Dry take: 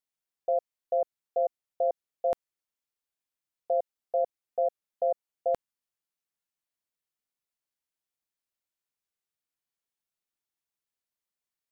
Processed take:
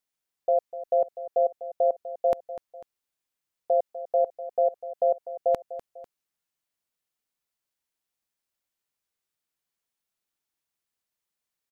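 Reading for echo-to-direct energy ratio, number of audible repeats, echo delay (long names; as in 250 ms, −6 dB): −13.0 dB, 2, 248 ms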